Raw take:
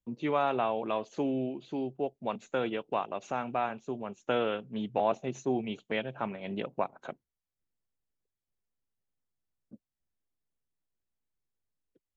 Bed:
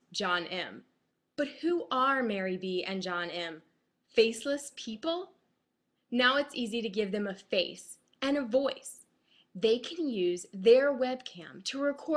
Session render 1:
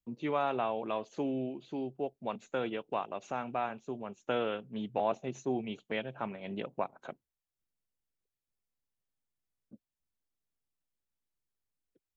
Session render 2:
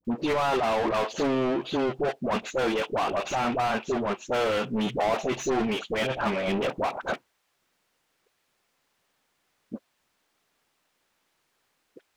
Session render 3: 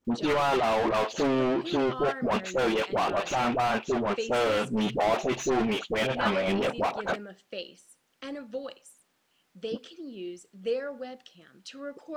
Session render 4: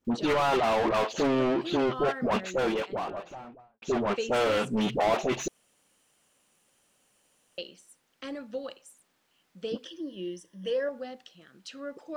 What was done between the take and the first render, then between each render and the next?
gain -3 dB
overdrive pedal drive 35 dB, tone 2100 Hz, clips at -18 dBFS; dispersion highs, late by 49 ms, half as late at 740 Hz
add bed -8.5 dB
2.28–3.82 studio fade out; 5.48–7.58 room tone; 9.85–10.89 ripple EQ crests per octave 1.2, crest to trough 13 dB

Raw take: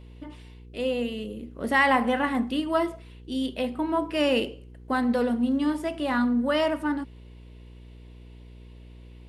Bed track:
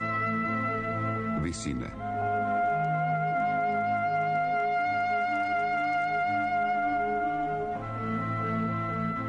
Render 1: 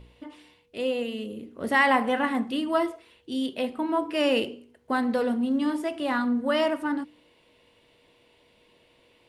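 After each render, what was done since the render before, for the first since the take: de-hum 60 Hz, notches 7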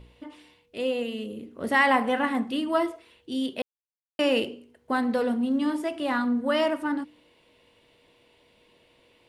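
3.62–4.19 mute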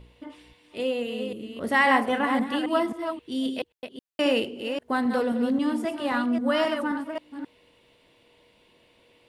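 reverse delay 0.266 s, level -6.5 dB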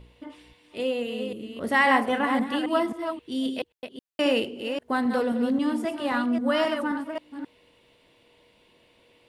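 nothing audible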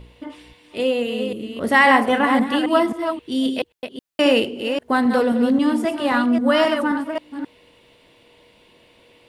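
gain +7 dB; limiter -3 dBFS, peak gain reduction 2 dB

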